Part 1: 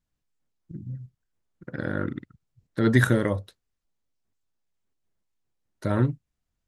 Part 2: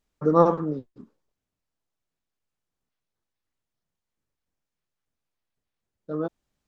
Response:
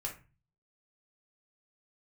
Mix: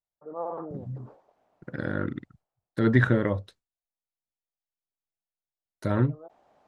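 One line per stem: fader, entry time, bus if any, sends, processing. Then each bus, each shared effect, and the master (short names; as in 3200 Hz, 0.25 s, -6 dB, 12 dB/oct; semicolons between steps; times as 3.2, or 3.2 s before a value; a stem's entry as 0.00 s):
-1.0 dB, 0.00 s, no send, gate with hold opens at -43 dBFS; treble ducked by the level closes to 2700 Hz, closed at -17.5 dBFS
-10.0 dB, 0.00 s, no send, band-pass 710 Hz, Q 3.2; sustainer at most 29 dB/s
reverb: off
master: dry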